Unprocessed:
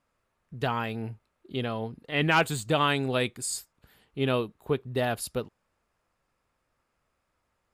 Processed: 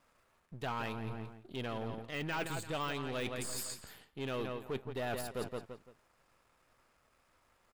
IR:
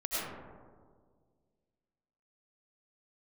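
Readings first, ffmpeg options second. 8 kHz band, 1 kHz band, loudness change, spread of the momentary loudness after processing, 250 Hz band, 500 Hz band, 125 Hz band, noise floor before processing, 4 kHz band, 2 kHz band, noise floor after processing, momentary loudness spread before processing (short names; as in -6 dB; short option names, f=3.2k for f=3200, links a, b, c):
-8.5 dB, -10.5 dB, -11.0 dB, 9 LU, -10.0 dB, -10.0 dB, -10.5 dB, -78 dBFS, -10.5 dB, -11.5 dB, -73 dBFS, 13 LU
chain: -filter_complex "[0:a]aeval=exprs='if(lt(val(0),0),0.447*val(0),val(0))':c=same,asplit=2[a][b];[b]adelay=170,lowpass=f=4.7k:p=1,volume=-12dB,asplit=2[c][d];[d]adelay=170,lowpass=f=4.7k:p=1,volume=0.29,asplit=2[e][f];[f]adelay=170,lowpass=f=4.7k:p=1,volume=0.29[g];[a][c][e][g]amix=inputs=4:normalize=0,deesser=0.85,asoftclip=type=tanh:threshold=-24.5dB,areverse,acompressor=threshold=-43dB:ratio=6,areverse,lowshelf=f=290:g=-5,volume=9dB"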